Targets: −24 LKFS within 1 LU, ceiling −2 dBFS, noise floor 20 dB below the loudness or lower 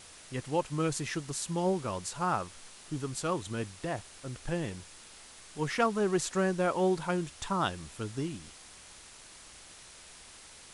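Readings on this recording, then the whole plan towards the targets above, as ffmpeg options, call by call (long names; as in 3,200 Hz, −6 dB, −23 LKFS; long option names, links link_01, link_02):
background noise floor −52 dBFS; target noise floor −53 dBFS; integrated loudness −33.0 LKFS; sample peak −15.0 dBFS; target loudness −24.0 LKFS
→ -af "afftdn=noise_reduction=6:noise_floor=-52"
-af "volume=9dB"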